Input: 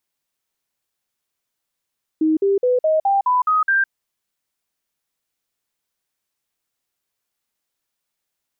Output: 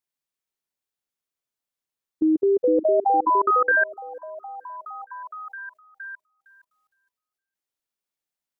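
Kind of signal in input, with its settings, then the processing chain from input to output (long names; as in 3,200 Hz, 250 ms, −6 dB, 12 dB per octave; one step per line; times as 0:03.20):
stepped sweep 314 Hz up, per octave 3, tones 8, 0.16 s, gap 0.05 s −13.5 dBFS
on a send: echo through a band-pass that steps 463 ms, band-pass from 300 Hz, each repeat 0.7 octaves, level −3 dB
on the sum: output level in coarse steps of 18 dB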